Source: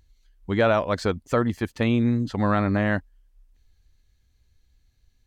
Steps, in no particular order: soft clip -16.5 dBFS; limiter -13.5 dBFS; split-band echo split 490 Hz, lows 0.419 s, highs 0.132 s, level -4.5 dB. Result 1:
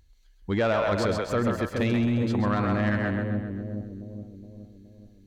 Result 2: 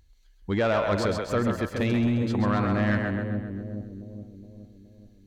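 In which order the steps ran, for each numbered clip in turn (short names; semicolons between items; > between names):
split-band echo > limiter > soft clip; limiter > split-band echo > soft clip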